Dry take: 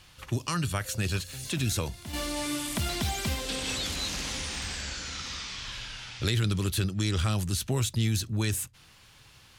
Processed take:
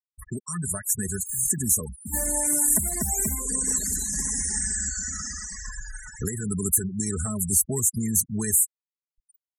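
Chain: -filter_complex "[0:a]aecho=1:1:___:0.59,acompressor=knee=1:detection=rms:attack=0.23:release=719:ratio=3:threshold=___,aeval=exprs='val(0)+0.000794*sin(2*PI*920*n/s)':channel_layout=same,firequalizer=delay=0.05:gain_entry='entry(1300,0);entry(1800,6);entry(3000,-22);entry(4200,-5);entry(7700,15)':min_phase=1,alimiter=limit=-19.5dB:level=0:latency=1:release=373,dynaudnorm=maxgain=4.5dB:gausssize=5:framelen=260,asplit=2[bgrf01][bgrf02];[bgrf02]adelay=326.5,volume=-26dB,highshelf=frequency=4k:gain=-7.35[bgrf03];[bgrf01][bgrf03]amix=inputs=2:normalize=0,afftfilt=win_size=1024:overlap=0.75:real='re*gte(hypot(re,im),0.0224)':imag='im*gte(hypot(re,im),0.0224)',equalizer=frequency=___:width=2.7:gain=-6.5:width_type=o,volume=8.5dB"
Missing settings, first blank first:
4.7, -37dB, 2.4k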